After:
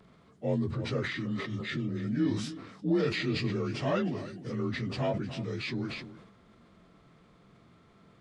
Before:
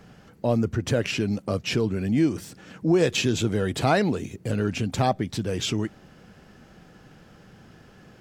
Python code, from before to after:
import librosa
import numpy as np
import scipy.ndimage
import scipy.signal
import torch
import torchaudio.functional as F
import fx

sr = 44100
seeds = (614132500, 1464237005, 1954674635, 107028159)

p1 = fx.partial_stretch(x, sr, pct=87)
p2 = fx.spec_repair(p1, sr, seeds[0], start_s=1.19, length_s=0.82, low_hz=380.0, high_hz=1300.0, source='both')
p3 = p2 + fx.echo_single(p2, sr, ms=304, db=-17.0, dry=0)
p4 = fx.sustainer(p3, sr, db_per_s=52.0)
y = p4 * librosa.db_to_amplitude(-6.5)